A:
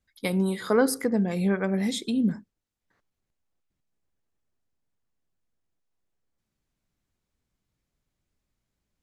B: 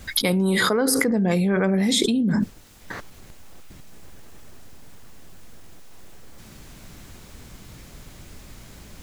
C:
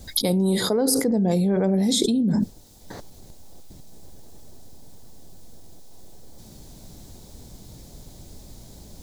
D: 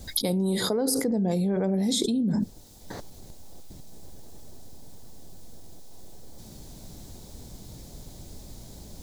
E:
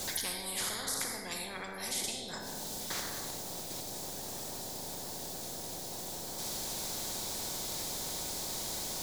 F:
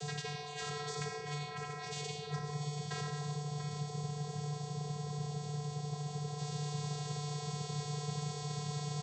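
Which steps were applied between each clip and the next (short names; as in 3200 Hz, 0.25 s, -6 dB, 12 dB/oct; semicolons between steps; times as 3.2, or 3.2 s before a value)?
fast leveller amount 100%; gain -2.5 dB
band shelf 1800 Hz -12.5 dB
compressor 2.5:1, threshold -24 dBFS, peak gain reduction 5.5 dB
limiter -22.5 dBFS, peak gain reduction 10.5 dB; reverb RT60 1.3 s, pre-delay 5 ms, DRR 4 dB; spectral compressor 10:1; gain -5.5 dB
vocoder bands 16, square 147 Hz; on a send: echo 0.688 s -9 dB; on the sum: gain +1.5 dB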